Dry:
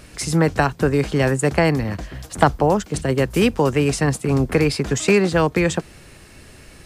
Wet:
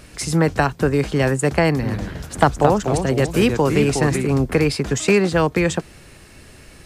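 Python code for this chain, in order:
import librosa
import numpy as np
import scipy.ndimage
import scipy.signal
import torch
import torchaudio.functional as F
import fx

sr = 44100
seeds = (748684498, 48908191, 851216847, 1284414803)

y = fx.echo_pitch(x, sr, ms=132, semitones=-2, count=2, db_per_echo=-6.0, at=(1.7, 4.27))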